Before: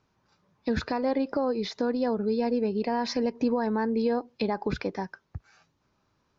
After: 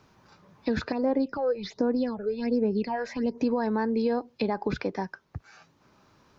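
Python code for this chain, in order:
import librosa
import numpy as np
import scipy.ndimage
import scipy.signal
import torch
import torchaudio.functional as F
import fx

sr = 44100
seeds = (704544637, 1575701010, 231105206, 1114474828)

y = fx.phaser_stages(x, sr, stages=6, low_hz=230.0, high_hz=4200.0, hz=1.3, feedback_pct=50, at=(0.92, 3.38))
y = fx.band_squash(y, sr, depth_pct=40)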